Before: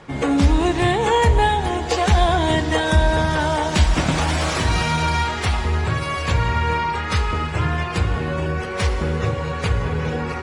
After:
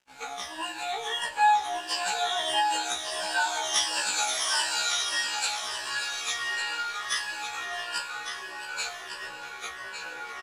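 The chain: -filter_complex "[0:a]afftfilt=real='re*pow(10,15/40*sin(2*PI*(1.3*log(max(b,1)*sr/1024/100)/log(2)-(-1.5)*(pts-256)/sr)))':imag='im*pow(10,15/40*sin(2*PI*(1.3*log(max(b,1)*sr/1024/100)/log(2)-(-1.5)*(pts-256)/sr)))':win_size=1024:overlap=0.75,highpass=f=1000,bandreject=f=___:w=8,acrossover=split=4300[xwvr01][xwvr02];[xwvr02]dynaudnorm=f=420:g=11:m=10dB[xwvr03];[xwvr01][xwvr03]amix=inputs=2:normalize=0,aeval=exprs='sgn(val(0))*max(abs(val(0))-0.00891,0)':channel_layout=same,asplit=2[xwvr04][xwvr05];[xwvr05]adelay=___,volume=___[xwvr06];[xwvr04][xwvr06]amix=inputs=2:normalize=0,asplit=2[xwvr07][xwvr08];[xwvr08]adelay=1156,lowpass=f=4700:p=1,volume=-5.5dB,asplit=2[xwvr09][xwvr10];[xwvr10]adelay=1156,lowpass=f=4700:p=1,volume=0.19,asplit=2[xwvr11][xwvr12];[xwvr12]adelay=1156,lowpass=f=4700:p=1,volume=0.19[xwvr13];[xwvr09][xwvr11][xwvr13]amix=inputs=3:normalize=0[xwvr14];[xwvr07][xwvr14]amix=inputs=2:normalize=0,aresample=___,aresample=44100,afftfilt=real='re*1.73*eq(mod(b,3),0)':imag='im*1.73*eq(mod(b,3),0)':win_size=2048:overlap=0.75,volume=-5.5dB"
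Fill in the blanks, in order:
2100, 38, -13.5dB, 32000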